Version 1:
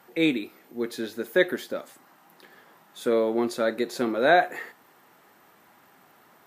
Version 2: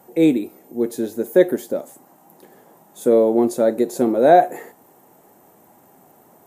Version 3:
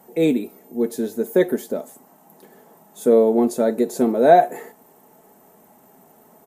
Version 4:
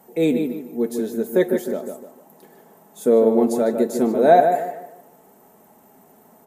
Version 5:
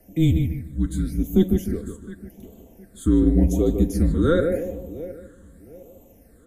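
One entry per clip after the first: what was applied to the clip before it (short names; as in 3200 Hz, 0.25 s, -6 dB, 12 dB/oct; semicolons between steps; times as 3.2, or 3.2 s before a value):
band shelf 2400 Hz -14 dB 2.5 oct; gain +8.5 dB
comb 4.6 ms, depth 44%; gain -1 dB
darkening echo 0.151 s, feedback 34%, low-pass 2600 Hz, level -6 dB; gain -1 dB
frequency shift -170 Hz; darkening echo 0.712 s, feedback 30%, low-pass 4200 Hz, level -19 dB; phaser stages 8, 0.88 Hz, lowest notch 710–1600 Hz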